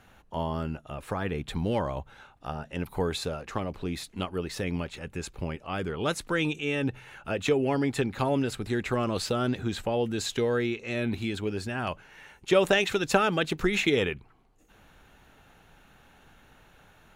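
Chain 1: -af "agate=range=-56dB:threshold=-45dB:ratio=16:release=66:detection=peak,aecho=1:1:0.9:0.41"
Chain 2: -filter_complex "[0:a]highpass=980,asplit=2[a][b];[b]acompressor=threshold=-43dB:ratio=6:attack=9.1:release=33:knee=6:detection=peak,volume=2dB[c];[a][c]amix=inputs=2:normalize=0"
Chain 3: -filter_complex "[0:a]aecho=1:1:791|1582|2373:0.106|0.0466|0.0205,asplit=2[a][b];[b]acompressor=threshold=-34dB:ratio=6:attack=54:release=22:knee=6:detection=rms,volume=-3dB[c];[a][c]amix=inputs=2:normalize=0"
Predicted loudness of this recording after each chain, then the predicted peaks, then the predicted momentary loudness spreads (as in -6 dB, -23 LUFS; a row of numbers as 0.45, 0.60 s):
-29.5, -31.5, -26.5 LUFS; -7.5, -9.5, -5.5 dBFS; 11, 12, 15 LU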